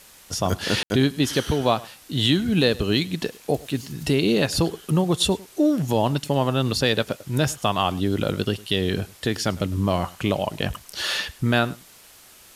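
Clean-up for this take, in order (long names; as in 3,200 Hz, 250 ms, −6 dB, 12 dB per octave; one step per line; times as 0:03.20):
ambience match 0:00.83–0:00.90
broadband denoise 19 dB, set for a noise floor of −49 dBFS
echo removal 104 ms −22 dB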